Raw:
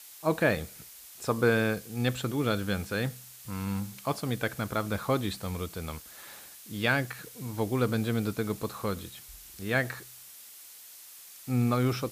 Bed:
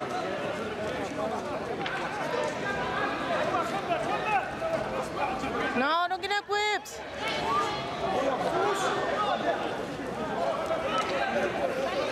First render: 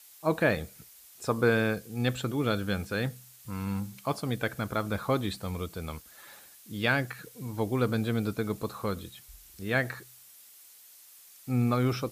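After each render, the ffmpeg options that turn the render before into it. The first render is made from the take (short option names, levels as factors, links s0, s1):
-af "afftdn=nr=6:nf=-49"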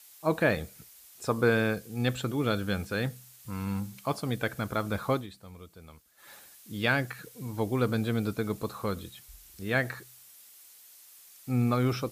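-filter_complex "[0:a]asplit=3[s0][s1][s2];[s0]atrim=end=5.27,asetpts=PTS-STARTPTS,afade=t=out:st=5.12:d=0.15:silence=0.223872[s3];[s1]atrim=start=5.27:end=6.16,asetpts=PTS-STARTPTS,volume=0.224[s4];[s2]atrim=start=6.16,asetpts=PTS-STARTPTS,afade=t=in:d=0.15:silence=0.223872[s5];[s3][s4][s5]concat=n=3:v=0:a=1"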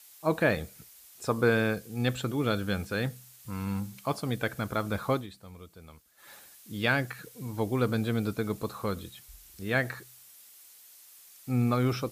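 -af anull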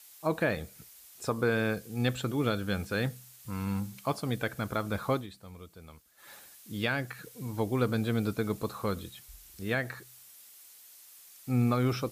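-af "alimiter=limit=0.15:level=0:latency=1:release=406"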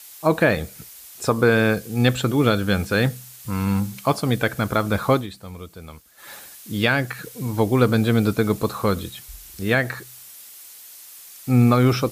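-af "volume=3.55"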